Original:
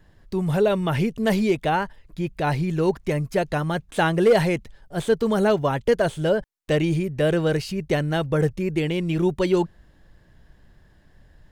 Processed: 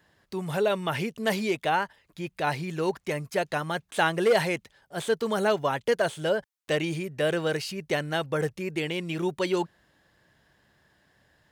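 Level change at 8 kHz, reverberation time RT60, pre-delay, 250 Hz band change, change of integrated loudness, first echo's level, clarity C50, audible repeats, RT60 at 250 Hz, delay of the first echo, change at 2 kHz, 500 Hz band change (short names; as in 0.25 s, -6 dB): 0.0 dB, none, none, -8.5 dB, -5.0 dB, none, none, none, none, none, -0.5 dB, -5.0 dB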